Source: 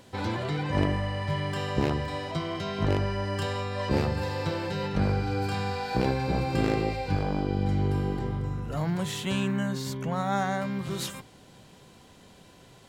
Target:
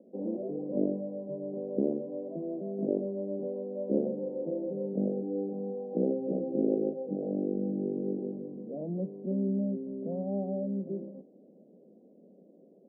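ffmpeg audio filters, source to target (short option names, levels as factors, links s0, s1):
-af "asuperpass=centerf=340:order=12:qfactor=0.78"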